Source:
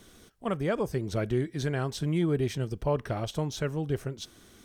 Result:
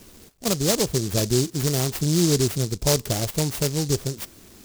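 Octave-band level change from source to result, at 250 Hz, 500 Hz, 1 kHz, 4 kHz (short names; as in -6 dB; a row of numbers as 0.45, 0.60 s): +6.5, +5.0, +2.5, +14.5 dB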